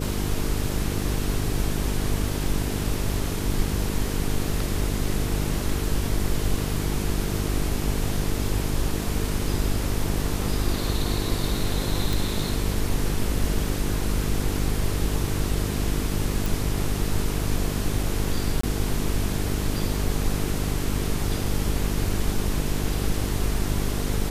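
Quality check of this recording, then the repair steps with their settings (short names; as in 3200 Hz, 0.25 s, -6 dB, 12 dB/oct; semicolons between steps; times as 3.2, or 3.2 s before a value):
buzz 50 Hz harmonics 9 -28 dBFS
12.13 pop
16.46 pop
18.61–18.63 gap 24 ms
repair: de-click; de-hum 50 Hz, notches 9; interpolate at 18.61, 24 ms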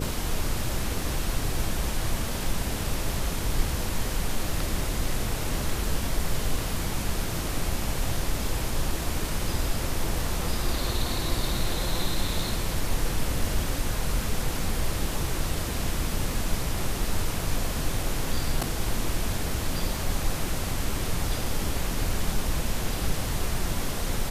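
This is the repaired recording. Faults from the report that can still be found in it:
none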